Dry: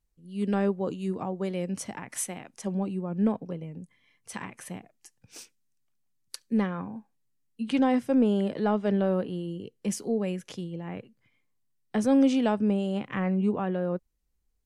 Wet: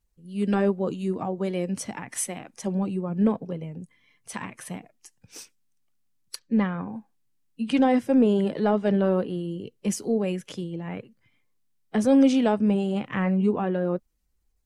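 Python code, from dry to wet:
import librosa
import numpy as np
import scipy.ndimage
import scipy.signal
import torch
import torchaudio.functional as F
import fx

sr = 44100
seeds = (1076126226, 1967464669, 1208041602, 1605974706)

y = fx.spec_quant(x, sr, step_db=15)
y = fx.air_absorb(y, sr, metres=130.0, at=(6.39, 6.88))
y = y * 10.0 ** (3.5 / 20.0)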